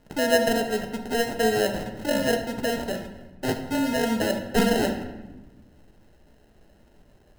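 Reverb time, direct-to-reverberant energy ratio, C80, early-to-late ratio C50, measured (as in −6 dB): 1.1 s, 4.5 dB, 10.0 dB, 8.0 dB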